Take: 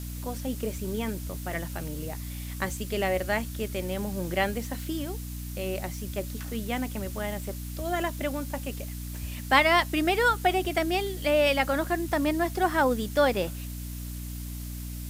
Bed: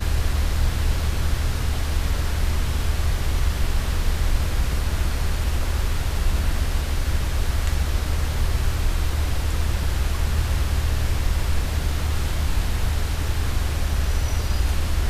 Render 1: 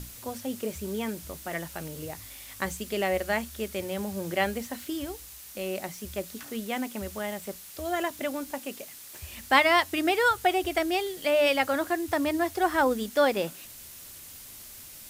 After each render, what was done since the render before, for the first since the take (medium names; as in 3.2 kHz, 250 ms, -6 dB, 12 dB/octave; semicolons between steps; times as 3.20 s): hum notches 60/120/180/240/300 Hz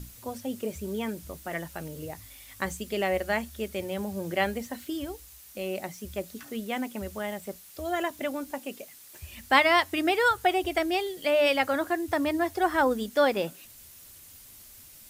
noise reduction 6 dB, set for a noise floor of -46 dBFS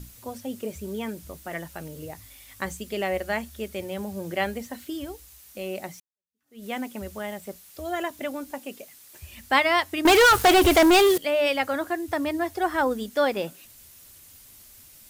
6.00–6.65 s: fade in exponential; 10.05–11.18 s: waveshaping leveller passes 5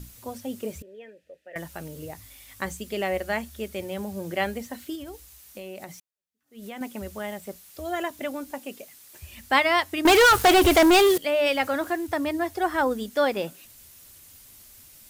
0.82–1.56 s: vowel filter e; 4.95–6.81 s: compression, threshold -34 dBFS; 11.46–12.07 s: companding laws mixed up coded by mu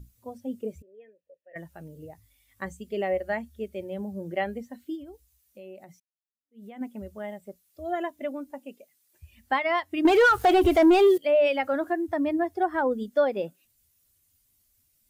compression 5:1, threshold -21 dBFS, peak gain reduction 6.5 dB; spectral contrast expander 1.5:1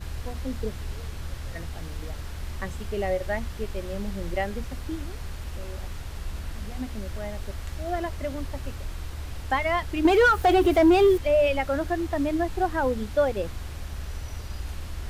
add bed -12.5 dB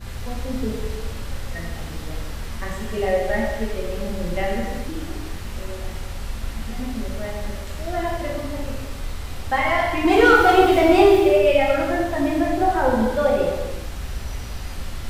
gated-style reverb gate 450 ms falling, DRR -5 dB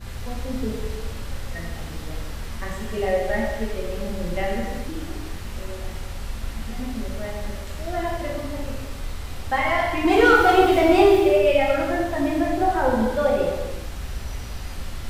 trim -1.5 dB